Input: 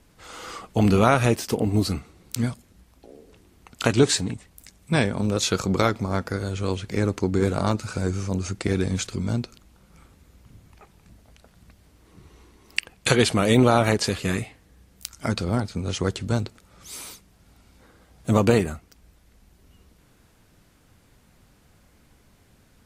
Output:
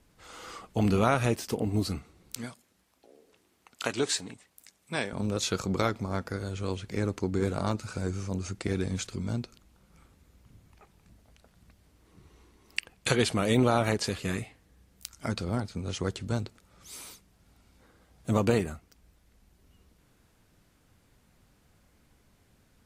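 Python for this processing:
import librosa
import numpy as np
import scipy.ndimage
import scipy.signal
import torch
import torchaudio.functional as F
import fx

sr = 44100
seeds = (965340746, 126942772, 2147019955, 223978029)

y = fx.highpass(x, sr, hz=500.0, slope=6, at=(2.36, 5.13))
y = F.gain(torch.from_numpy(y), -6.5).numpy()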